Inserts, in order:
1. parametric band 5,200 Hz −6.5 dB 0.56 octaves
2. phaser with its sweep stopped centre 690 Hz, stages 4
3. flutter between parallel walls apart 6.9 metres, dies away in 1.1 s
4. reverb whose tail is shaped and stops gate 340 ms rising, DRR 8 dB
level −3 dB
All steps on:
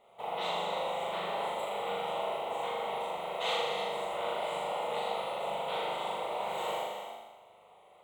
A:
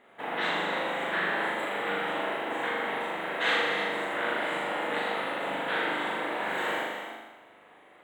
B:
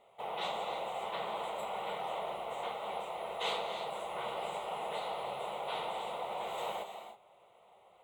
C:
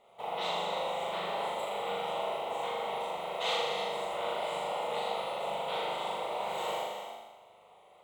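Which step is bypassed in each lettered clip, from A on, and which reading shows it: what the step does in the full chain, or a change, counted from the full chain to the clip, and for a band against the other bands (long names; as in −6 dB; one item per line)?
2, 2 kHz band +10.5 dB
3, echo-to-direct ratio 3.0 dB to −8.0 dB
1, 8 kHz band +1.5 dB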